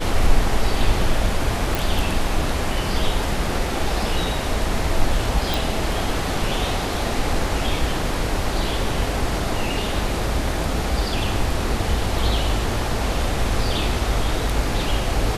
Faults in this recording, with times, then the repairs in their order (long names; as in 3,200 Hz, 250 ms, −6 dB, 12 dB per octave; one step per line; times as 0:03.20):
0:01.75: click
0:05.54: click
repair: click removal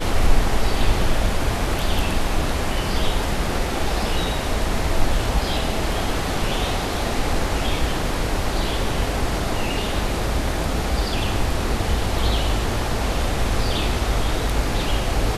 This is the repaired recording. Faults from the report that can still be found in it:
none of them is left